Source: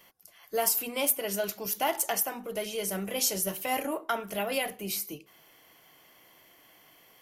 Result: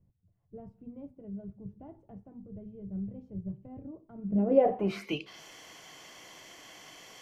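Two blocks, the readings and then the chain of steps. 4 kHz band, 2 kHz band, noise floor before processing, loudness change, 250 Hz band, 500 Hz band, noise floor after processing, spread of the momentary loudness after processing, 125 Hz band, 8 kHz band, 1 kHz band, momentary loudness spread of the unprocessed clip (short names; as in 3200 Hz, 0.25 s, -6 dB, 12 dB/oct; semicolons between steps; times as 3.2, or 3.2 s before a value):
-11.5 dB, -11.5 dB, -59 dBFS, -2.0 dB, +4.5 dB, +0.5 dB, -70 dBFS, 23 LU, +5.5 dB, under -20 dB, -6.5 dB, 7 LU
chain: low-pass sweep 110 Hz -> 6700 Hz, 4.15–5.41; gain +7.5 dB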